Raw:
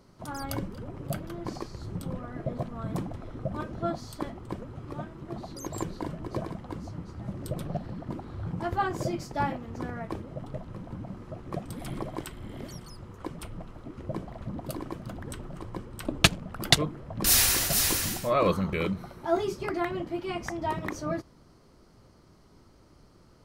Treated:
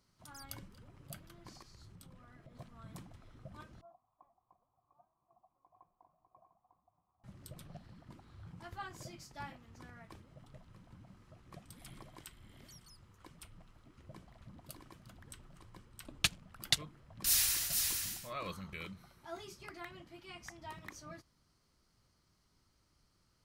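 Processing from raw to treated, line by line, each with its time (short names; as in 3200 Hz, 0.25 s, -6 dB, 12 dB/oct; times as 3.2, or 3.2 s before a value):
1.62–2.55 compressor 2.5:1, threshold -36 dBFS
3.81–7.24 vocal tract filter a
whole clip: passive tone stack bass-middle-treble 5-5-5; gain -2 dB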